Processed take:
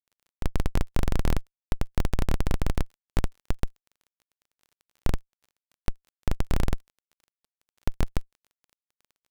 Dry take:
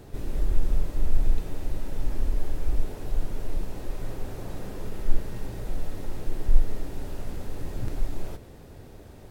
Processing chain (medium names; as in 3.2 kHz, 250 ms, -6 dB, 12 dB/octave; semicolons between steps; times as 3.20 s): bass shelf 440 Hz +2.5 dB; Schmitt trigger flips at -15 dBFS; crackle 19 per s -44 dBFS